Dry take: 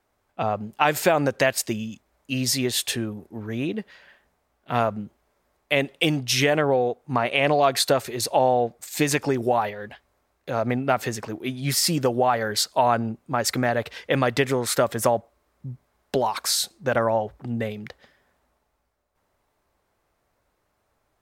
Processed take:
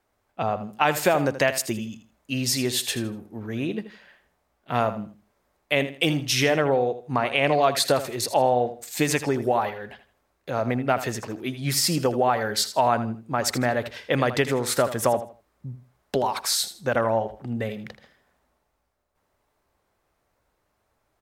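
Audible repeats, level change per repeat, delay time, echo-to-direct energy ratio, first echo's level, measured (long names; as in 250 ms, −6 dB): 2, −11.5 dB, 80 ms, −12.0 dB, −12.5 dB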